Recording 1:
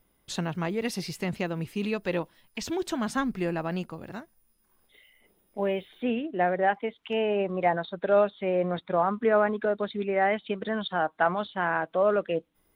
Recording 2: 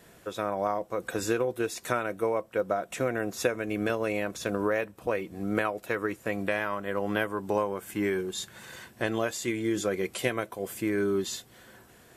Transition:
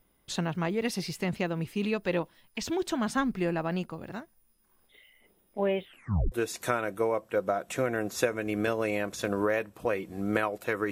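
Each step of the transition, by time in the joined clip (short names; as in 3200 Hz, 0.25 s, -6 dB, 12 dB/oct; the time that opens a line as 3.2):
recording 1
5.85 tape stop 0.47 s
6.32 switch to recording 2 from 1.54 s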